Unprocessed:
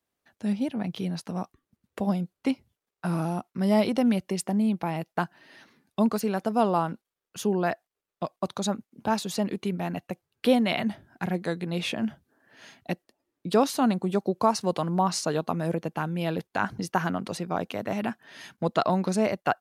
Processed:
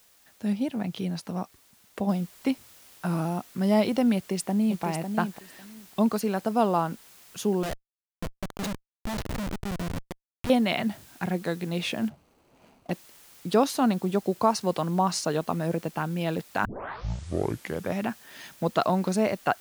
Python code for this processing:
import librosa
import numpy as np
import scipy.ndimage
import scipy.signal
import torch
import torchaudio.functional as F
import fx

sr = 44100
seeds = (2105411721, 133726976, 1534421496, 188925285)

y = fx.noise_floor_step(x, sr, seeds[0], at_s=2.09, before_db=-60, after_db=-53, tilt_db=0.0)
y = fx.echo_throw(y, sr, start_s=4.15, length_s=0.68, ms=550, feedback_pct=15, wet_db=-7.0)
y = fx.schmitt(y, sr, flips_db=-28.0, at=(7.63, 10.5))
y = fx.median_filter(y, sr, points=25, at=(12.08, 12.9), fade=0.02)
y = fx.edit(y, sr, fx.tape_start(start_s=16.65, length_s=1.39), tone=tone)